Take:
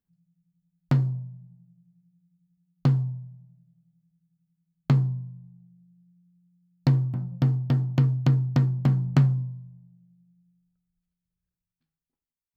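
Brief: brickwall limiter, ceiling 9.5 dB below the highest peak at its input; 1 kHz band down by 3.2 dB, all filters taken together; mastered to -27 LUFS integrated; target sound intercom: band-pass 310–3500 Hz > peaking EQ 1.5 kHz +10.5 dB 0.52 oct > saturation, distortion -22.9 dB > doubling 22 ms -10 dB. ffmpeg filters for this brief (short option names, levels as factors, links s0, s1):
-filter_complex "[0:a]equalizer=f=1000:t=o:g=-8.5,alimiter=limit=0.119:level=0:latency=1,highpass=310,lowpass=3500,equalizer=f=1500:t=o:w=0.52:g=10.5,asoftclip=threshold=0.0562,asplit=2[s0][s1];[s1]adelay=22,volume=0.316[s2];[s0][s2]amix=inputs=2:normalize=0,volume=4.73"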